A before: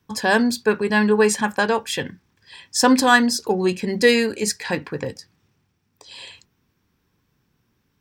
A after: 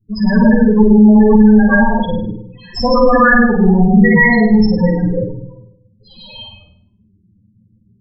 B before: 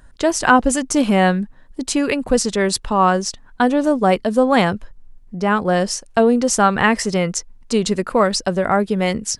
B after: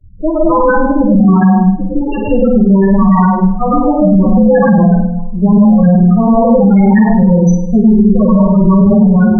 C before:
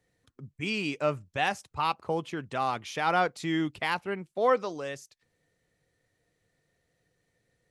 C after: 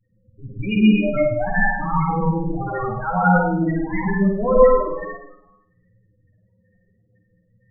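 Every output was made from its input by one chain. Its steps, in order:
minimum comb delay 9.8 ms; in parallel at -3.5 dB: decimation with a swept rate 19×, swing 60% 0.56 Hz; on the sum: plate-style reverb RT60 0.91 s, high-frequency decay 0.7×, pre-delay 90 ms, DRR -7 dB; loudest bins only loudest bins 8; band shelf 550 Hz -8.5 dB 2.3 oct; on a send: flutter echo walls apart 8.8 m, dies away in 0.53 s; on the sum: maximiser +7.5 dB; normalise peaks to -1.5 dBFS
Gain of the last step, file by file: -0.5, -0.5, +1.5 dB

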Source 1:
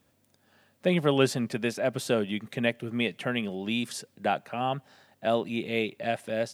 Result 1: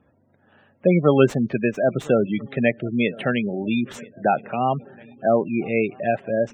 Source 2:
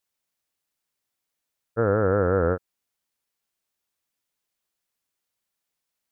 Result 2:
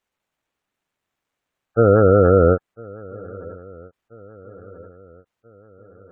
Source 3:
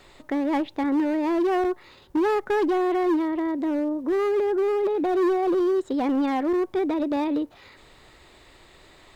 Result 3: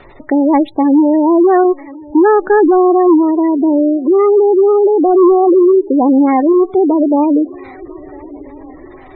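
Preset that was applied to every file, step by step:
median filter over 9 samples; swung echo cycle 1.334 s, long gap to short 3:1, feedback 49%, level -23.5 dB; spectral gate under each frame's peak -20 dB strong; normalise peaks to -3 dBFS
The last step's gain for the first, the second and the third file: +8.0, +9.0, +13.5 dB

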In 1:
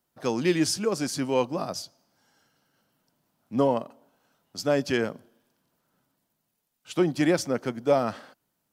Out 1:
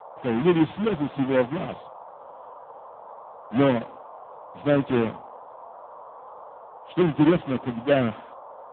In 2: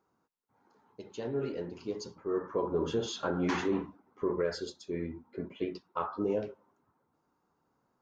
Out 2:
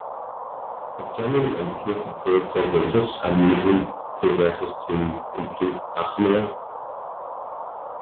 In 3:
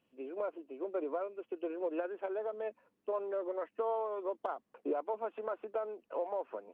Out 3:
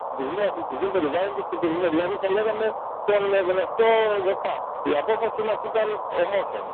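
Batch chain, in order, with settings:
half-waves squared off; band noise 480–1100 Hz -40 dBFS; harmonic-percussive split percussive -7 dB; AMR-NB 6.7 kbps 8000 Hz; match loudness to -24 LUFS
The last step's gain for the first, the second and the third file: +1.5, +11.0, +13.5 dB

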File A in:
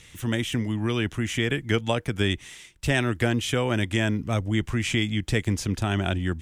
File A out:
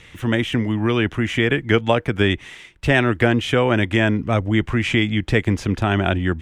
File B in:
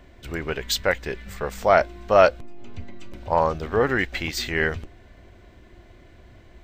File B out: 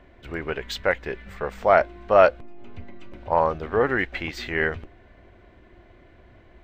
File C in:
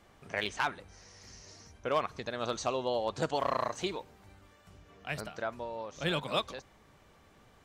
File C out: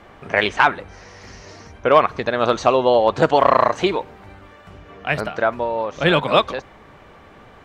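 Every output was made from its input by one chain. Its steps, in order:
tone controls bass -4 dB, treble -15 dB; normalise peaks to -1.5 dBFS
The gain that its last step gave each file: +8.5, 0.0, +17.0 dB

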